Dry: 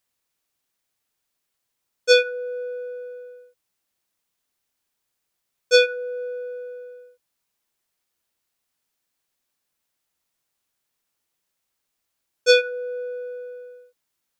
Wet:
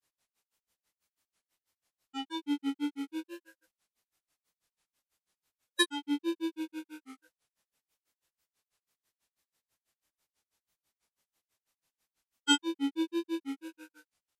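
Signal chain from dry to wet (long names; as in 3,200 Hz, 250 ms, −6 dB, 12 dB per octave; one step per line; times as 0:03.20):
downward compressor 6 to 1, threshold −23 dBFS, peak gain reduction 11.5 dB
phase-vocoder pitch shift with formants kept −8 semitones
on a send: ambience of single reflections 26 ms −4.5 dB, 46 ms −4.5 dB
on the sum: granular cloud 125 ms, grains 6.1 per second, pitch spread up and down by 3 semitones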